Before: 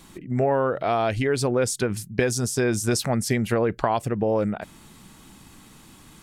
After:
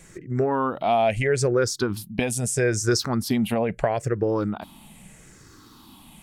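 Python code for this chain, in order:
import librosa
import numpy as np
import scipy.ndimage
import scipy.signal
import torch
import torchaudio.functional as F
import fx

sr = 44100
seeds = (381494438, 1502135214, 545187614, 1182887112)

y = fx.spec_ripple(x, sr, per_octave=0.52, drift_hz=-0.77, depth_db=13)
y = y * 10.0 ** (-2.0 / 20.0)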